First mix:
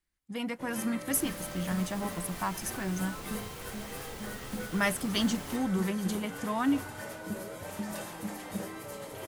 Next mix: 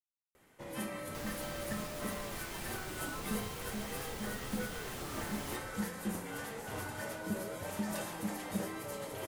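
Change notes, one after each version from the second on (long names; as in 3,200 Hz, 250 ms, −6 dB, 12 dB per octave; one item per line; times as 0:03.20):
speech: muted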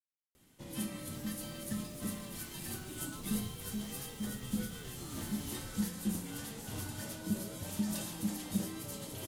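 first sound +3.5 dB
second sound −10.0 dB
master: add flat-topped bell 960 Hz −11 dB 2.9 octaves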